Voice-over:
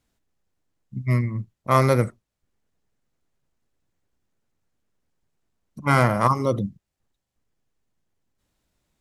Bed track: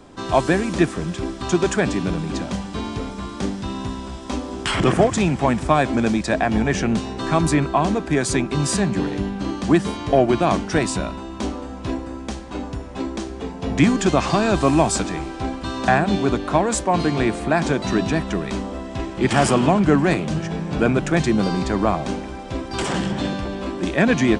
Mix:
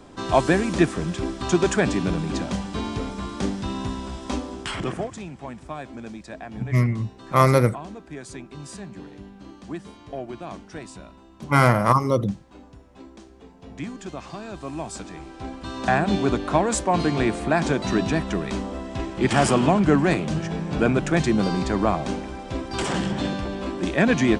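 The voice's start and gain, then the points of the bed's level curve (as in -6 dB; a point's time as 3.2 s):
5.65 s, +1.5 dB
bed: 4.33 s -1 dB
5.25 s -17.5 dB
14.59 s -17.5 dB
16.09 s -2 dB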